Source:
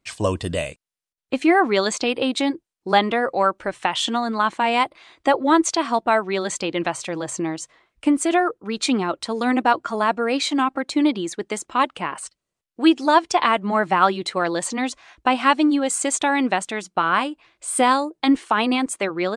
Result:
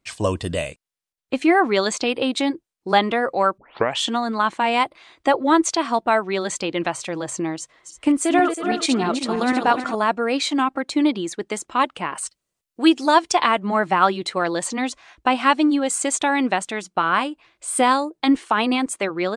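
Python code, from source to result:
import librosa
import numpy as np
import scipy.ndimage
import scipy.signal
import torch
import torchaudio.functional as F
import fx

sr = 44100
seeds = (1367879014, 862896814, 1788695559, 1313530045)

y = fx.reverse_delay_fb(x, sr, ms=161, feedback_pct=63, wet_db=-6.5, at=(7.59, 9.95))
y = fx.high_shelf(y, sr, hz=5000.0, db=7.0, at=(12.12, 13.46))
y = fx.edit(y, sr, fx.tape_start(start_s=3.58, length_s=0.41), tone=tone)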